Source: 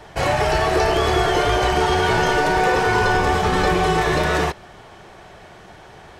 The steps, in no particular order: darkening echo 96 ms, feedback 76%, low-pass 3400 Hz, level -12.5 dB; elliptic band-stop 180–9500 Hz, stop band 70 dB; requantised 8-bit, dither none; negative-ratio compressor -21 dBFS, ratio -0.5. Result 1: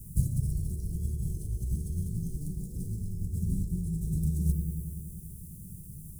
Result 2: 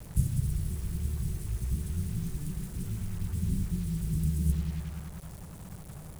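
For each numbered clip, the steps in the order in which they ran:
darkening echo > requantised > negative-ratio compressor > elliptic band-stop; darkening echo > negative-ratio compressor > elliptic band-stop > requantised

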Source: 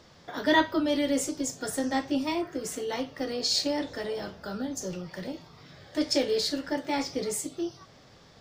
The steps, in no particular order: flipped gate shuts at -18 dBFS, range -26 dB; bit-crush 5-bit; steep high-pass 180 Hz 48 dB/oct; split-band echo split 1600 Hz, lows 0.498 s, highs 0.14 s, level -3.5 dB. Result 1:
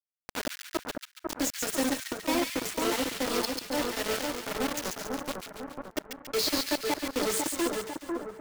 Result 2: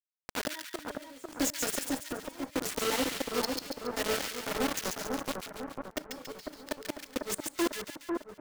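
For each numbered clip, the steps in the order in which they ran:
flipped gate > steep high-pass > bit-crush > split-band echo; steep high-pass > bit-crush > flipped gate > split-band echo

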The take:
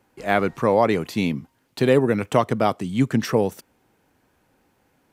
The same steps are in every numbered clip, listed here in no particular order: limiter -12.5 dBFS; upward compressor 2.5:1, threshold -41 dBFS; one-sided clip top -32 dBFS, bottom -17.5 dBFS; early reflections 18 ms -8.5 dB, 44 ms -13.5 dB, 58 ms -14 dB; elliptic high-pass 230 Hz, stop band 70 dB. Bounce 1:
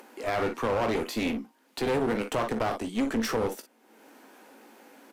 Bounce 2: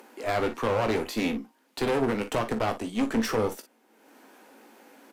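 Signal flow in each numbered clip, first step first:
early reflections > limiter > elliptic high-pass > one-sided clip > upward compressor; upward compressor > elliptic high-pass > limiter > one-sided clip > early reflections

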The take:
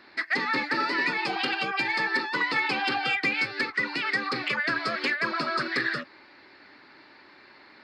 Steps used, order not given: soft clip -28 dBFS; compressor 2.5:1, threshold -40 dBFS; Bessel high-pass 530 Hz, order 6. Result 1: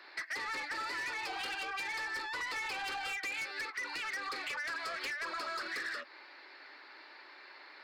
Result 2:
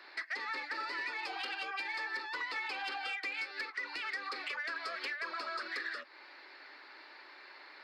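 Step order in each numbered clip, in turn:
Bessel high-pass > soft clip > compressor; compressor > Bessel high-pass > soft clip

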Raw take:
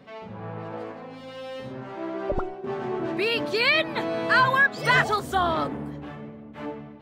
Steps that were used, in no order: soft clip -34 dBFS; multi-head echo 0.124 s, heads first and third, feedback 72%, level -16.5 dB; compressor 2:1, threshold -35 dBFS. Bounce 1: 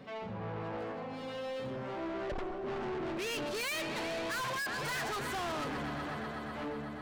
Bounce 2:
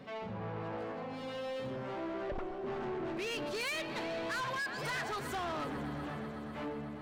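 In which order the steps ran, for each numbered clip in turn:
multi-head echo > soft clip > compressor; compressor > multi-head echo > soft clip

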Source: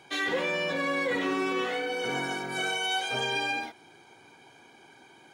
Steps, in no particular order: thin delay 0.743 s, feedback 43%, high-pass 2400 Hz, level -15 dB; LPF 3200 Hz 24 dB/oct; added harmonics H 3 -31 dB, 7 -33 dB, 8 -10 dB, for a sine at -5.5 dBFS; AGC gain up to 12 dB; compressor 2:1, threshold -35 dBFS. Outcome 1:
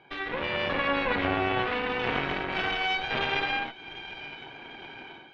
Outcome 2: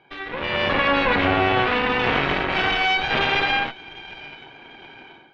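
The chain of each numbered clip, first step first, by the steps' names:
AGC > thin delay > compressor > added harmonics > LPF; thin delay > compressor > AGC > added harmonics > LPF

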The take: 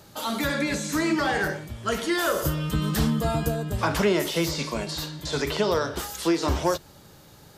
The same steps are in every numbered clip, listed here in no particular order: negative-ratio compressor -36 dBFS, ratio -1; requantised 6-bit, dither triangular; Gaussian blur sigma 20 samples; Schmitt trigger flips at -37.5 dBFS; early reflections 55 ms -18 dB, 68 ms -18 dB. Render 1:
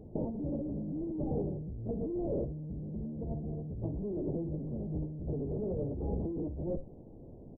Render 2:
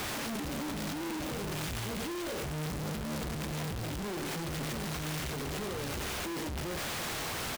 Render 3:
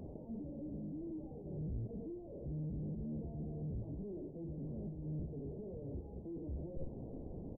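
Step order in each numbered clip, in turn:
Schmitt trigger > requantised > Gaussian blur > negative-ratio compressor > early reflections; Gaussian blur > requantised > Schmitt trigger > early reflections > negative-ratio compressor; Schmitt trigger > early reflections > requantised > negative-ratio compressor > Gaussian blur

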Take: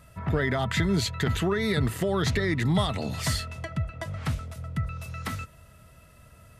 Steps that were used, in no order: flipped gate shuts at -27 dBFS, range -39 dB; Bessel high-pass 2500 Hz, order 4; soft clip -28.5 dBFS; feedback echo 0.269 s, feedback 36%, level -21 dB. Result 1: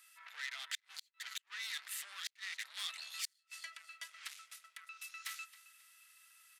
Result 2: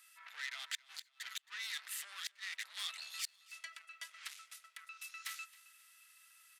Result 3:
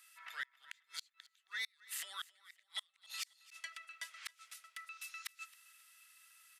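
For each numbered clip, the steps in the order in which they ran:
feedback echo > soft clip > Bessel high-pass > flipped gate; soft clip > Bessel high-pass > flipped gate > feedback echo; Bessel high-pass > flipped gate > soft clip > feedback echo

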